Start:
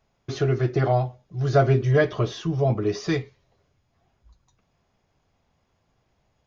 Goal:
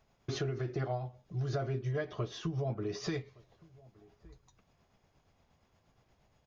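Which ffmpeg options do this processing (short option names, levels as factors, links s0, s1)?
-filter_complex "[0:a]tremolo=f=8.5:d=0.4,acompressor=threshold=0.02:ratio=6,asplit=2[s0][s1];[s1]adelay=1166,volume=0.0631,highshelf=f=4000:g=-26.2[s2];[s0][s2]amix=inputs=2:normalize=0,volume=1.12"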